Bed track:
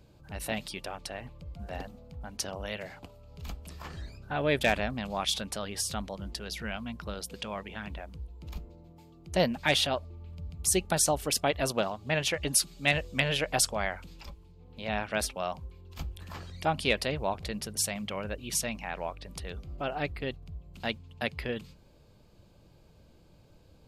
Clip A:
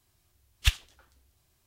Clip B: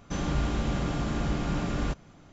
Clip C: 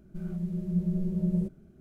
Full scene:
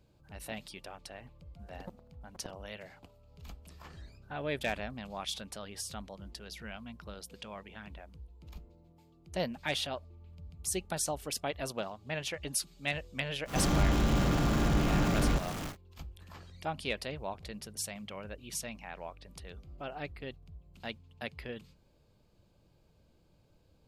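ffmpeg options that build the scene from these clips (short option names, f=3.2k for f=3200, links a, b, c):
-filter_complex "[0:a]volume=-8dB[a];[3:a]acrusher=bits=2:mix=0:aa=0.5[b];[2:a]aeval=exprs='val(0)+0.5*0.0224*sgn(val(0))':c=same[c];[b]atrim=end=1.8,asetpts=PTS-STARTPTS,volume=-1dB,afade=t=in:d=0.004:c=hsin,afade=t=out:st=1.796:d=0.004:c=hsin,adelay=1110[d];[c]atrim=end=2.32,asetpts=PTS-STARTPTS,volume=-0.5dB,afade=t=in:d=0.1,afade=t=out:st=2.22:d=0.1,adelay=13450[e];[a][d][e]amix=inputs=3:normalize=0"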